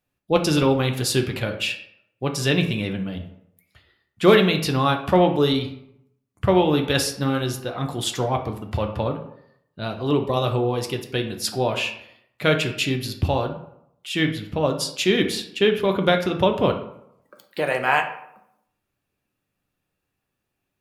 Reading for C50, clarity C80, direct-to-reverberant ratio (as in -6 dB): 9.5 dB, 13.0 dB, 3.5 dB